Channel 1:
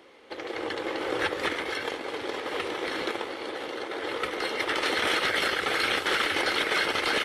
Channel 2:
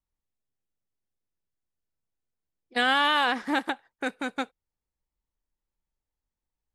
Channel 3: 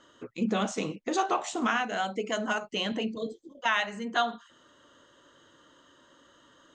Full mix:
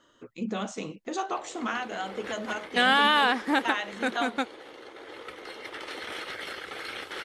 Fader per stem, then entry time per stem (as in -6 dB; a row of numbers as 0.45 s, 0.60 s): -11.5 dB, +1.5 dB, -4.0 dB; 1.05 s, 0.00 s, 0.00 s